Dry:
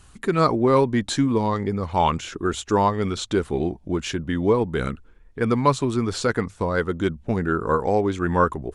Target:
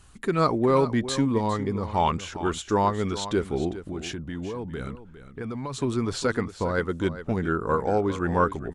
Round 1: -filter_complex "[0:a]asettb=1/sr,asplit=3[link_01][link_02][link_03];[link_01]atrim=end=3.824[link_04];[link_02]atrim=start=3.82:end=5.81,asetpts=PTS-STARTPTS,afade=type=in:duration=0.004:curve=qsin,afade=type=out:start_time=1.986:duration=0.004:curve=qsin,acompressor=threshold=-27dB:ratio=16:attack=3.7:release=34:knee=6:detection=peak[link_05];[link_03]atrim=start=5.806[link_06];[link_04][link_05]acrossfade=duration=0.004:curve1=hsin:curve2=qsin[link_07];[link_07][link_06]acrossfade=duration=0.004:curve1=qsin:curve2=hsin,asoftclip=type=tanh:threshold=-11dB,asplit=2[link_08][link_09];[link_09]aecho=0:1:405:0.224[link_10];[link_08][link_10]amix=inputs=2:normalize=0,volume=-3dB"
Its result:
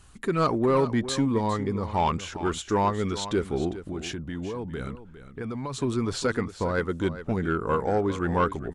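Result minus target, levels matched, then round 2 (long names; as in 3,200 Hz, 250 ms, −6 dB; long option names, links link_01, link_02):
soft clipping: distortion +17 dB
-filter_complex "[0:a]asettb=1/sr,asplit=3[link_01][link_02][link_03];[link_01]atrim=end=3.824[link_04];[link_02]atrim=start=3.82:end=5.81,asetpts=PTS-STARTPTS,afade=type=in:duration=0.004:curve=qsin,afade=type=out:start_time=1.986:duration=0.004:curve=qsin,acompressor=threshold=-27dB:ratio=16:attack=3.7:release=34:knee=6:detection=peak[link_05];[link_03]atrim=start=5.806[link_06];[link_04][link_05]acrossfade=duration=0.004:curve1=hsin:curve2=qsin[link_07];[link_07][link_06]acrossfade=duration=0.004:curve1=qsin:curve2=hsin,asoftclip=type=tanh:threshold=-1dB,asplit=2[link_08][link_09];[link_09]aecho=0:1:405:0.224[link_10];[link_08][link_10]amix=inputs=2:normalize=0,volume=-3dB"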